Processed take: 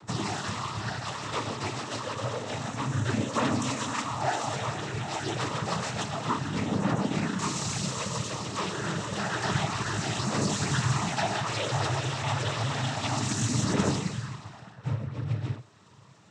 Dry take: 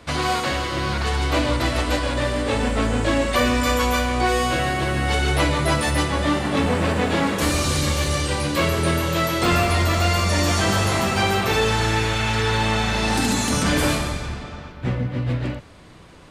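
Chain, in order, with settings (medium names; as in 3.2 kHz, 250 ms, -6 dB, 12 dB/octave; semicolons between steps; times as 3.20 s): ten-band graphic EQ 250 Hz -5 dB, 500 Hz -10 dB, 2 kHz -9 dB, 4 kHz -5 dB; phaser 0.29 Hz, delay 2.6 ms, feedback 49%; noise-vocoded speech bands 12; trim -3.5 dB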